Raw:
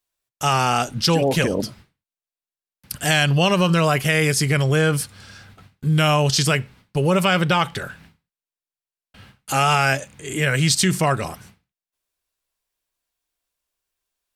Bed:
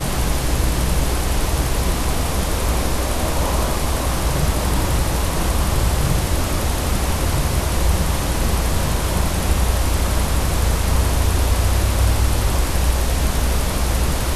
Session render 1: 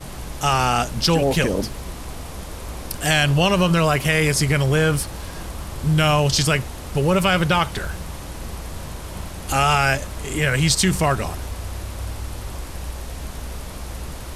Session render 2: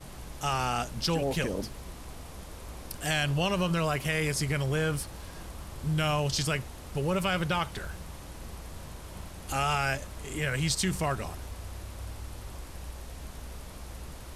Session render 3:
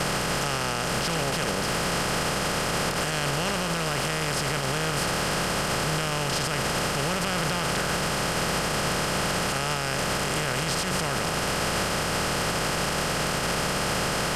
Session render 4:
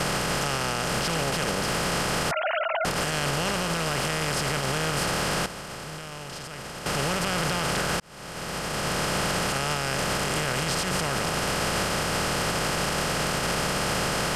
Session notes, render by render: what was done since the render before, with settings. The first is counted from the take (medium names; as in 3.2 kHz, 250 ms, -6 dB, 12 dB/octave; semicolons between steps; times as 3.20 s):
add bed -13 dB
trim -10.5 dB
spectral levelling over time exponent 0.2; peak limiter -17 dBFS, peak gain reduction 12 dB
2.31–2.85 s: formants replaced by sine waves; 5.46–6.86 s: gain -11 dB; 8.00–9.05 s: fade in